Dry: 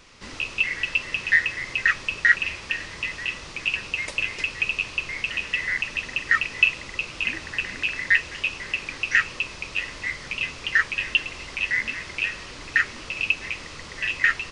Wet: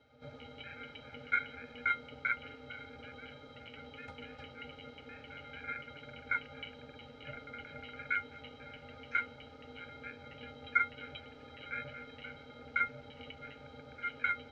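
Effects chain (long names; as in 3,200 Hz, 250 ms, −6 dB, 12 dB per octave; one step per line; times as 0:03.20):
resonances in every octave A, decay 0.14 s
ring modulation 360 Hz
level +4.5 dB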